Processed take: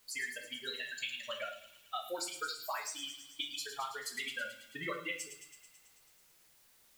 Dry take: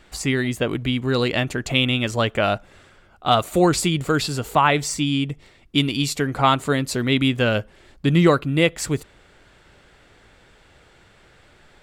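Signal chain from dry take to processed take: per-bin expansion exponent 3; HPF 1100 Hz 12 dB/oct; compressor 6:1, threshold -42 dBFS, peak gain reduction 21 dB; added noise white -71 dBFS; time stretch by phase-locked vocoder 0.59×; thin delay 0.109 s, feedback 70%, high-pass 3600 Hz, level -8 dB; shoebox room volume 71 m³, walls mixed, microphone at 0.64 m; gain +4 dB

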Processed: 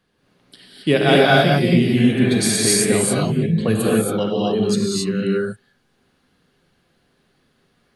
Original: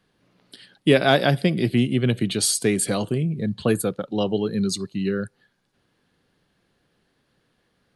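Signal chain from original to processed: spectral repair 1.99–2.6, 530–3200 Hz after; non-linear reverb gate 0.3 s rising, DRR -5 dB; gain -1 dB

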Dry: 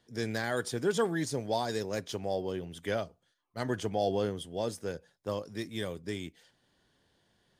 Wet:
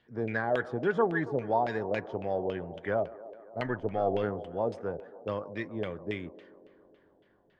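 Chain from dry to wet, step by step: 3.66–4.24 half-wave gain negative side -3 dB; band-limited delay 0.138 s, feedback 75%, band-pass 560 Hz, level -15 dB; LFO low-pass saw down 3.6 Hz 560–2800 Hz

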